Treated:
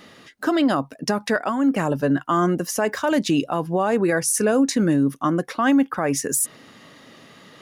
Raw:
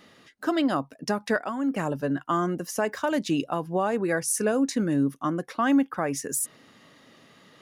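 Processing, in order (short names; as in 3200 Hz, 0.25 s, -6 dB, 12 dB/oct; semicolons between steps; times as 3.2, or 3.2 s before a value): limiter -18.5 dBFS, peak gain reduction 4.5 dB; gain +7.5 dB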